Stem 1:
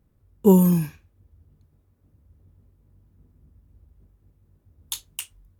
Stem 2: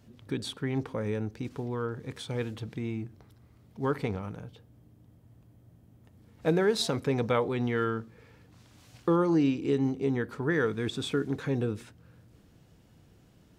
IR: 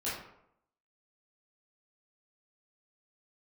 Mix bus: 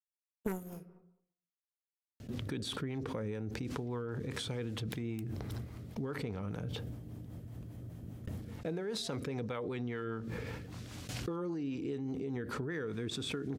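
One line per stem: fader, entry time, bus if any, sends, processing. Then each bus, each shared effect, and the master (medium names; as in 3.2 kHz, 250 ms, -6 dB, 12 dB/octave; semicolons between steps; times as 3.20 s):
0.0 dB, 0.00 s, send -21 dB, power-law waveshaper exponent 3; sine folder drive 6 dB, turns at -4 dBFS
-6.0 dB, 2.20 s, no send, gate with hold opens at -45 dBFS; level flattener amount 70%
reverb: on, RT60 0.75 s, pre-delay 13 ms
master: rotary cabinet horn 5 Hz; compression 12:1, threshold -34 dBFS, peak gain reduction 23.5 dB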